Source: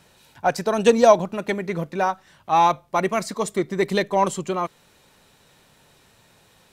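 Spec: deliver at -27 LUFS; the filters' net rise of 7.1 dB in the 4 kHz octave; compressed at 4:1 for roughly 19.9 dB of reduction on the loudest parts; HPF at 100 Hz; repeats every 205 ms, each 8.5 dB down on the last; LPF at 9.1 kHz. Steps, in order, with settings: high-pass 100 Hz; low-pass 9.1 kHz; peaking EQ 4 kHz +8.5 dB; compression 4:1, threshold -34 dBFS; feedback delay 205 ms, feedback 38%, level -8.5 dB; trim +8.5 dB

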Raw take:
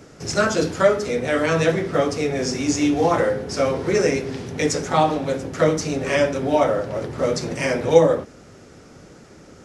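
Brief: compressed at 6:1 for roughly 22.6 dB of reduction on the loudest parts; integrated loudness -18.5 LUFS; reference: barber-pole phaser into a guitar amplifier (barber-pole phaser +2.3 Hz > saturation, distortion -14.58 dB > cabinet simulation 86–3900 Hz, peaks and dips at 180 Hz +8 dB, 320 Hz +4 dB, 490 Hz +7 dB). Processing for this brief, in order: compression 6:1, threshold -33 dBFS; barber-pole phaser +2.3 Hz; saturation -33 dBFS; cabinet simulation 86–3900 Hz, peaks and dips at 180 Hz +8 dB, 320 Hz +4 dB, 490 Hz +7 dB; trim +19 dB

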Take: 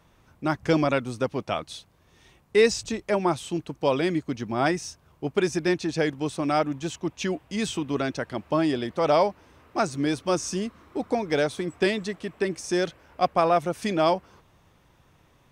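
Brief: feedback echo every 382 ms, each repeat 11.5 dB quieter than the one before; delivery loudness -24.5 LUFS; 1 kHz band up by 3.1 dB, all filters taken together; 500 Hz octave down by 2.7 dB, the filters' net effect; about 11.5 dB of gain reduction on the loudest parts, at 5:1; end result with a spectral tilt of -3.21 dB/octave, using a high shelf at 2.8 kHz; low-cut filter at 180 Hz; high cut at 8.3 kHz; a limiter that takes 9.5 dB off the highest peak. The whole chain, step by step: high-pass 180 Hz; low-pass 8.3 kHz; peaking EQ 500 Hz -5.5 dB; peaking EQ 1 kHz +5.5 dB; treble shelf 2.8 kHz +6.5 dB; compression 5:1, threshold -28 dBFS; peak limiter -23 dBFS; feedback delay 382 ms, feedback 27%, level -11.5 dB; trim +10.5 dB

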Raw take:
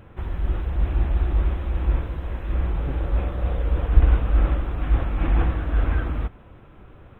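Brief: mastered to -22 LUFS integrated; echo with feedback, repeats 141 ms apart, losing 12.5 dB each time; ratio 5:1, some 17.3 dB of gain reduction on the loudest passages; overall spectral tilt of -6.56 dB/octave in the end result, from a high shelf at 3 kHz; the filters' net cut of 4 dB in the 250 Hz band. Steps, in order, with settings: peaking EQ 250 Hz -6 dB; treble shelf 3 kHz +5.5 dB; compression 5:1, threshold -27 dBFS; feedback delay 141 ms, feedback 24%, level -12.5 dB; trim +11.5 dB

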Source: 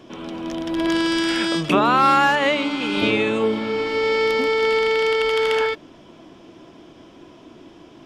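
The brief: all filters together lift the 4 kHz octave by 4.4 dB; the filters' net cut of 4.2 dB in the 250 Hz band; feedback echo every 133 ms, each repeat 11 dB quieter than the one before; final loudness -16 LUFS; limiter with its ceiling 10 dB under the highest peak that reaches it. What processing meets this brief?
peaking EQ 250 Hz -6 dB; peaking EQ 4 kHz +6 dB; peak limiter -15.5 dBFS; feedback delay 133 ms, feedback 28%, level -11 dB; trim +7.5 dB

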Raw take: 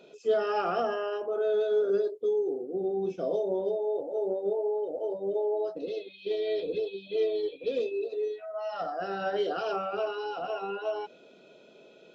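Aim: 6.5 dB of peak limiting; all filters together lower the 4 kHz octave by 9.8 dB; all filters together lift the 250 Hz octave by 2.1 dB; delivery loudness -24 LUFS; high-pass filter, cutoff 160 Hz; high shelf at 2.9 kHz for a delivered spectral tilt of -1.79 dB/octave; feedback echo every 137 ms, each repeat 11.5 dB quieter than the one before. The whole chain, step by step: high-pass 160 Hz; peaking EQ 250 Hz +5 dB; treble shelf 2.9 kHz -8 dB; peaking EQ 4 kHz -8 dB; peak limiter -22 dBFS; feedback delay 137 ms, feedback 27%, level -11.5 dB; trim +6.5 dB

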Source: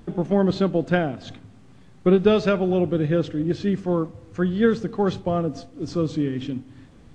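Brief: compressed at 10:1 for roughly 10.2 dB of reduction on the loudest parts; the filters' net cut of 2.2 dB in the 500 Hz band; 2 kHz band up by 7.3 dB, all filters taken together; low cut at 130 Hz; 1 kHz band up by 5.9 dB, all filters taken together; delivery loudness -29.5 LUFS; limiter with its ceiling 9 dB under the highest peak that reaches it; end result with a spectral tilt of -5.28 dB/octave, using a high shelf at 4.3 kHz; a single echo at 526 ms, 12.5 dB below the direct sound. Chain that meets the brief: high-pass 130 Hz; peaking EQ 500 Hz -5 dB; peaking EQ 1 kHz +8 dB; peaking EQ 2 kHz +6 dB; treble shelf 4.3 kHz +5 dB; compression 10:1, threshold -23 dBFS; peak limiter -19.5 dBFS; delay 526 ms -12.5 dB; trim +1.5 dB

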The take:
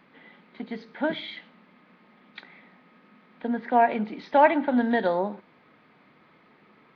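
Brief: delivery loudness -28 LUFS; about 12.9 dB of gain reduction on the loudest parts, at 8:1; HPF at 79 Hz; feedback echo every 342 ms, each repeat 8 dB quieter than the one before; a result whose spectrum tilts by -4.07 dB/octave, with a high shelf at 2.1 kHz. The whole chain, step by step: high-pass 79 Hz; treble shelf 2.1 kHz -6 dB; compression 8:1, threshold -27 dBFS; feedback delay 342 ms, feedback 40%, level -8 dB; trim +6 dB

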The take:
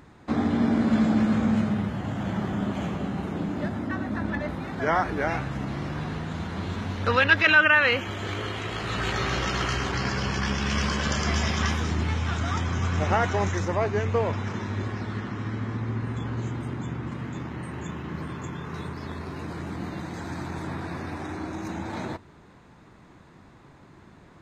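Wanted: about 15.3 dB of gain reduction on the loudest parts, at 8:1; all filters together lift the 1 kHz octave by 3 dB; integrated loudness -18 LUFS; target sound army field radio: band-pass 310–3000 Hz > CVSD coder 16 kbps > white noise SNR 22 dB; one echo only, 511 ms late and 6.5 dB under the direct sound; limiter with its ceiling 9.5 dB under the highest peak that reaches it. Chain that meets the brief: peaking EQ 1 kHz +4 dB; compression 8:1, threshold -28 dBFS; peak limiter -25 dBFS; band-pass 310–3000 Hz; delay 511 ms -6.5 dB; CVSD coder 16 kbps; white noise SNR 22 dB; trim +19.5 dB

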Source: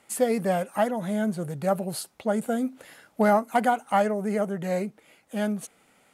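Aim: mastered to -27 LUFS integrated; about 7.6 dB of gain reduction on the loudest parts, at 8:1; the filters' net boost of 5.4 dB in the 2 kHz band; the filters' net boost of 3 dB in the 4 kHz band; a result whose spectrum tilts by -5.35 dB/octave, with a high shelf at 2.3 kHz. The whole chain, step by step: peaking EQ 2 kHz +8.5 dB; treble shelf 2.3 kHz -4 dB; peaking EQ 4 kHz +4.5 dB; compression 8:1, threshold -23 dBFS; trim +3 dB

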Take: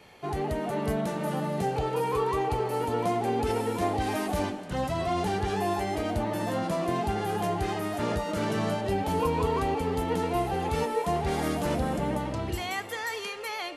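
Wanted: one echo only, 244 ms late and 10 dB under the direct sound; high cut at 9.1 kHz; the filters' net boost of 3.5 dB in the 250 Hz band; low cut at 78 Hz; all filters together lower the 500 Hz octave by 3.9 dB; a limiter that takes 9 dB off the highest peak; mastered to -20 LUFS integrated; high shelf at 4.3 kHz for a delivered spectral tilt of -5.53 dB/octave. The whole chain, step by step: high-pass 78 Hz; low-pass 9.1 kHz; peaking EQ 250 Hz +7 dB; peaking EQ 500 Hz -7.5 dB; treble shelf 4.3 kHz -4.5 dB; peak limiter -24.5 dBFS; delay 244 ms -10 dB; trim +12.5 dB

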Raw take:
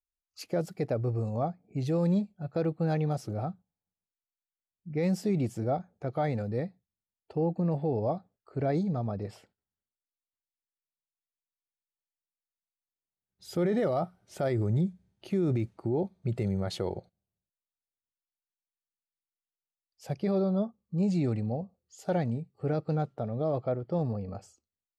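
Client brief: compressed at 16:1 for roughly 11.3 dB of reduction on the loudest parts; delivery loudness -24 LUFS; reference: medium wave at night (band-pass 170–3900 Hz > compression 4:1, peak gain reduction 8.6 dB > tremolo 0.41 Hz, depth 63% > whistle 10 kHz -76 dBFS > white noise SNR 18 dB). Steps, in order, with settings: compression 16:1, threshold -35 dBFS; band-pass 170–3900 Hz; compression 4:1, threshold -43 dBFS; tremolo 0.41 Hz, depth 63%; whistle 10 kHz -76 dBFS; white noise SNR 18 dB; trim +27.5 dB

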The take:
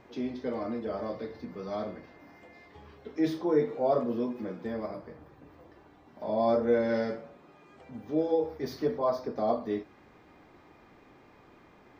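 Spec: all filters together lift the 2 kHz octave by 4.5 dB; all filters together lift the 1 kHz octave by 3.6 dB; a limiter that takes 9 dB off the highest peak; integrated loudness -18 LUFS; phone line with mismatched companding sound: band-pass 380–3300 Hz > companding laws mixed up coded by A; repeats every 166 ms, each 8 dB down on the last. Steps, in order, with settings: peaking EQ 1 kHz +4.5 dB; peaking EQ 2 kHz +4.5 dB; peak limiter -20.5 dBFS; band-pass 380–3300 Hz; feedback delay 166 ms, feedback 40%, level -8 dB; companding laws mixed up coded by A; trim +17 dB

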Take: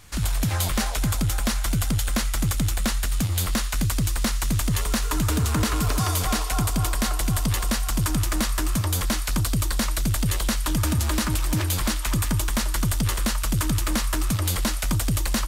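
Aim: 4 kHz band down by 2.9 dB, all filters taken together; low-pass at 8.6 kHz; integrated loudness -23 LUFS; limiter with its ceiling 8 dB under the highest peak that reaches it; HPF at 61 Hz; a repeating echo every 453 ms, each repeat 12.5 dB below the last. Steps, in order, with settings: high-pass 61 Hz; low-pass 8.6 kHz; peaking EQ 4 kHz -3.5 dB; peak limiter -20.5 dBFS; feedback delay 453 ms, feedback 24%, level -12.5 dB; trim +6.5 dB

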